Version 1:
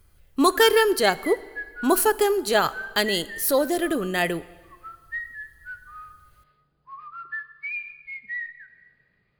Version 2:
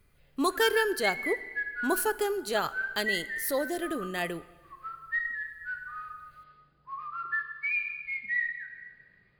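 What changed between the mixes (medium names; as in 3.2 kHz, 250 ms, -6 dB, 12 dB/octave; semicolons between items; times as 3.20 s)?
speech -8.5 dB; background: send +8.5 dB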